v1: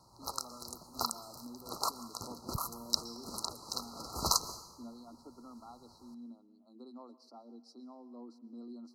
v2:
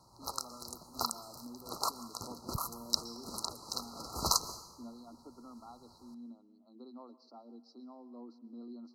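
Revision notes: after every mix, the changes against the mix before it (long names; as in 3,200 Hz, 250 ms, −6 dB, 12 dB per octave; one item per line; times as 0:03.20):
speech: add low-pass filter 5,000 Hz 24 dB per octave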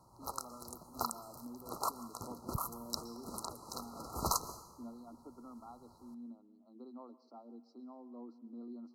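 master: add parametric band 4,500 Hz −11 dB 1.2 octaves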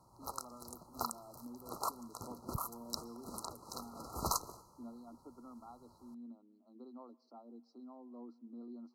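speech: send −9.0 dB
background: send −10.0 dB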